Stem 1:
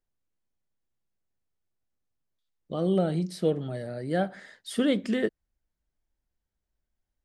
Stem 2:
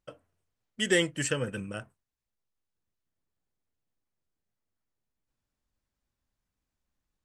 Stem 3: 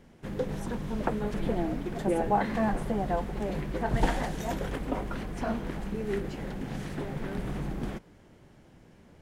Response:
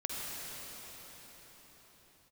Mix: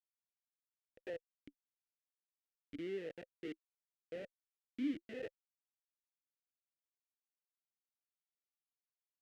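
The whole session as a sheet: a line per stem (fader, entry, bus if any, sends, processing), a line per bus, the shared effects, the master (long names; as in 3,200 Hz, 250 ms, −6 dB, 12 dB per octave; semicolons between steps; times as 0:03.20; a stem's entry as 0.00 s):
+2.0 dB, 0.00 s, no send, no processing
−4.0 dB, 0.15 s, no send, hold until the input has moved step −28.5 dBFS
−19.0 dB, 0.00 s, no send, downward compressor 6 to 1, threshold −38 dBFS, peak gain reduction 18.5 dB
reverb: not used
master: comparator with hysteresis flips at −22 dBFS; formant filter swept between two vowels e-i 0.94 Hz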